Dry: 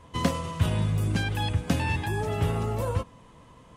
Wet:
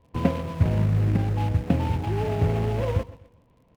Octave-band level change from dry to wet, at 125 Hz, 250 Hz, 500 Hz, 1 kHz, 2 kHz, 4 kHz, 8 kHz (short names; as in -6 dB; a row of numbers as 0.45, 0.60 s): +4.0 dB, +3.5 dB, +3.5 dB, -0.5 dB, -5.5 dB, -8.0 dB, n/a